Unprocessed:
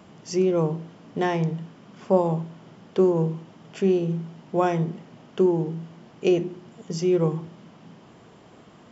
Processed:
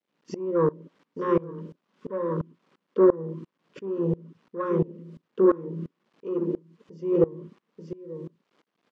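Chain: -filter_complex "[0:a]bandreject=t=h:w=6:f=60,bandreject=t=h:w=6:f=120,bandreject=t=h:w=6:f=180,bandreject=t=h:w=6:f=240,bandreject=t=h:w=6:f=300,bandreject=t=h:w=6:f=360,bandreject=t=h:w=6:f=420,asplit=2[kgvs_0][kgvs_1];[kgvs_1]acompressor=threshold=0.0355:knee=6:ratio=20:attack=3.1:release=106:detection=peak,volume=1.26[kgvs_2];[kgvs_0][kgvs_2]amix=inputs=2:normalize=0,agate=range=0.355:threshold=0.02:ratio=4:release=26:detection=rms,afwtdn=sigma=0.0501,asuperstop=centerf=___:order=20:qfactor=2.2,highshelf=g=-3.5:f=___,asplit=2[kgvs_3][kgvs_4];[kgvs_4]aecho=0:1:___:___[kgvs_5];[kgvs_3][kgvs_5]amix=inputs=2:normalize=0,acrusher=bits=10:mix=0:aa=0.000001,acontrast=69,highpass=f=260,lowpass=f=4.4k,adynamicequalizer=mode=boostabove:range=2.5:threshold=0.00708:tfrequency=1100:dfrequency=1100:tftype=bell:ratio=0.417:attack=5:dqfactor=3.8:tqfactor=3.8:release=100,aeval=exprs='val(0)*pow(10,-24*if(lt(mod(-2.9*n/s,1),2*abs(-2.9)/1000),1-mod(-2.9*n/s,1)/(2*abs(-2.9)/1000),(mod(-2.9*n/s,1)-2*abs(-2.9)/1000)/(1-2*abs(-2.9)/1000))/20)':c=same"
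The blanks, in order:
740, 2.4k, 884, 0.282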